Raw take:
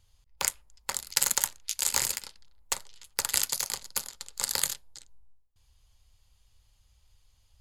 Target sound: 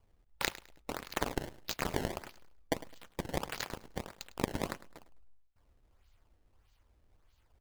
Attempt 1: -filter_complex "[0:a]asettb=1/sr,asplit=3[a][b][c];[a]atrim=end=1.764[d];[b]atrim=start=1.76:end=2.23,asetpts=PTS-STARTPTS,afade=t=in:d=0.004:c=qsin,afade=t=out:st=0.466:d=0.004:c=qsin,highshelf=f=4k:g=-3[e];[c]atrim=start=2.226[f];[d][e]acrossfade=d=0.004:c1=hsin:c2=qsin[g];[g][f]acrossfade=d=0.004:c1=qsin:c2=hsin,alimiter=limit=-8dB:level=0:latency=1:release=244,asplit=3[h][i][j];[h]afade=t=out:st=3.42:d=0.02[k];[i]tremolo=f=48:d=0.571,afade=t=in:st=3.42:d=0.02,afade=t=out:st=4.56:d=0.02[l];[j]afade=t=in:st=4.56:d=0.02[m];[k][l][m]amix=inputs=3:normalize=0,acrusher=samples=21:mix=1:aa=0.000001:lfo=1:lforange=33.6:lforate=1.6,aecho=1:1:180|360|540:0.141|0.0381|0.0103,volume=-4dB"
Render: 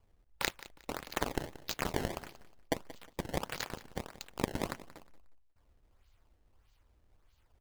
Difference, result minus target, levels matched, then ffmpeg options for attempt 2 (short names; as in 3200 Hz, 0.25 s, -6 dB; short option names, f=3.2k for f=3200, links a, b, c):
echo 76 ms late
-filter_complex "[0:a]asettb=1/sr,asplit=3[a][b][c];[a]atrim=end=1.764[d];[b]atrim=start=1.76:end=2.23,asetpts=PTS-STARTPTS,afade=t=in:d=0.004:c=qsin,afade=t=out:st=0.466:d=0.004:c=qsin,highshelf=f=4k:g=-3[e];[c]atrim=start=2.226[f];[d][e]acrossfade=d=0.004:c1=hsin:c2=qsin[g];[g][f]acrossfade=d=0.004:c1=qsin:c2=hsin,alimiter=limit=-8dB:level=0:latency=1:release=244,asplit=3[h][i][j];[h]afade=t=out:st=3.42:d=0.02[k];[i]tremolo=f=48:d=0.571,afade=t=in:st=3.42:d=0.02,afade=t=out:st=4.56:d=0.02[l];[j]afade=t=in:st=4.56:d=0.02[m];[k][l][m]amix=inputs=3:normalize=0,acrusher=samples=21:mix=1:aa=0.000001:lfo=1:lforange=33.6:lforate=1.6,aecho=1:1:104|208|312:0.141|0.0381|0.0103,volume=-4dB"